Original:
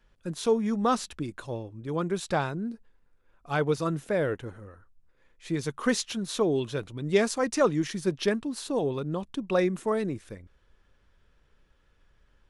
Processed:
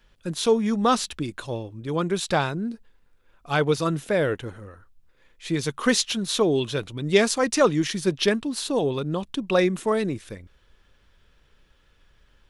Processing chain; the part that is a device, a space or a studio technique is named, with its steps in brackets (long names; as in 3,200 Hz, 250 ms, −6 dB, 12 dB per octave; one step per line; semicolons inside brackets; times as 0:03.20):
presence and air boost (parametric band 3,400 Hz +5.5 dB 1.3 octaves; high-shelf EQ 9,200 Hz +5.5 dB)
level +4 dB